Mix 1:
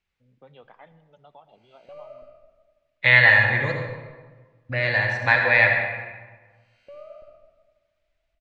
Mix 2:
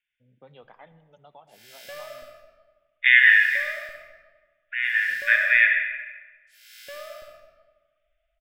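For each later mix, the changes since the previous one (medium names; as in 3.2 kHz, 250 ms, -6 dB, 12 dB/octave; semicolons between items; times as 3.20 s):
second voice: add brick-wall FIR band-pass 1.4–3.7 kHz; background: remove boxcar filter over 25 samples; master: remove low-pass 5.2 kHz 12 dB/octave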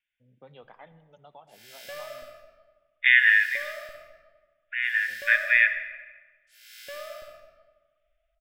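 second voice: send -9.0 dB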